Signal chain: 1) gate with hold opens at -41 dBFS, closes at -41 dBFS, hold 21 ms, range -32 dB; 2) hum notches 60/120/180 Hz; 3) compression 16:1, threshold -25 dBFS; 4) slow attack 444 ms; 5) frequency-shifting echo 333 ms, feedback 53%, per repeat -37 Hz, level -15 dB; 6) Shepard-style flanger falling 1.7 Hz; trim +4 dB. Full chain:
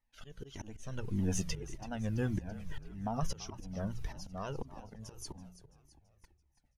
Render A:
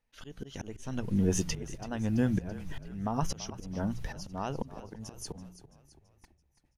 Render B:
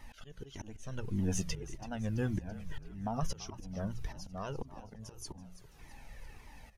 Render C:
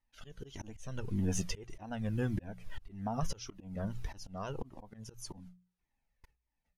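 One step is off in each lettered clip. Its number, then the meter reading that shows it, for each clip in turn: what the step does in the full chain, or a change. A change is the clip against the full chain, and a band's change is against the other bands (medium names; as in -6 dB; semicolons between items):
6, loudness change +5.5 LU; 1, momentary loudness spread change +5 LU; 5, momentary loudness spread change +1 LU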